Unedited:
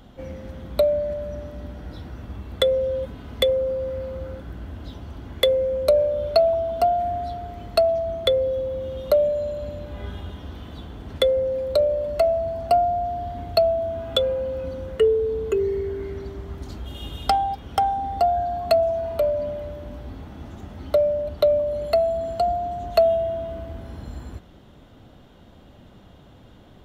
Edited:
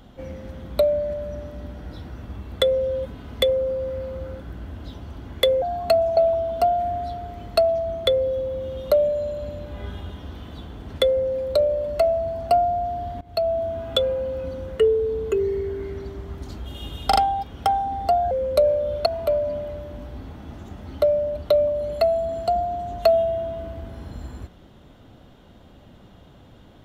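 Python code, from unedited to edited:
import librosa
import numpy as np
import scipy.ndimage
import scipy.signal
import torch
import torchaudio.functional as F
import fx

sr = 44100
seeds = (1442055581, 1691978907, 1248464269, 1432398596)

y = fx.edit(x, sr, fx.swap(start_s=5.62, length_s=0.75, other_s=18.43, other_length_s=0.55),
    fx.fade_in_from(start_s=13.41, length_s=0.36, floor_db=-22.0),
    fx.stutter(start_s=17.28, slice_s=0.04, count=3), tone=tone)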